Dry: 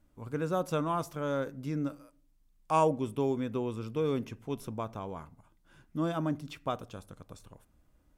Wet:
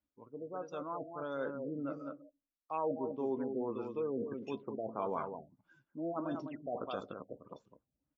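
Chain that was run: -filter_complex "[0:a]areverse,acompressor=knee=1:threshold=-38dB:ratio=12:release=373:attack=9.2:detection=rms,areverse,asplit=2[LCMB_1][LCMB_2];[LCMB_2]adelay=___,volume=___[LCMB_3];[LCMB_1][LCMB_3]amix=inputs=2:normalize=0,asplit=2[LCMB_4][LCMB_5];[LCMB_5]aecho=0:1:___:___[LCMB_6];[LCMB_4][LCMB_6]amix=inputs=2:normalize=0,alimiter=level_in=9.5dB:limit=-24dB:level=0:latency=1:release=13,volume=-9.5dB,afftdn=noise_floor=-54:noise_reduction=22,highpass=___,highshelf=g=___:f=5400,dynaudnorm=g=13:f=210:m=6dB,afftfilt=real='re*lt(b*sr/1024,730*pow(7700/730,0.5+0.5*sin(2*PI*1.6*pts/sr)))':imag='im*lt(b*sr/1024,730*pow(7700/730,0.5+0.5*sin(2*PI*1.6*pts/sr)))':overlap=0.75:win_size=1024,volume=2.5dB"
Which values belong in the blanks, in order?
15, -14dB, 203, 0.473, 290, 9.5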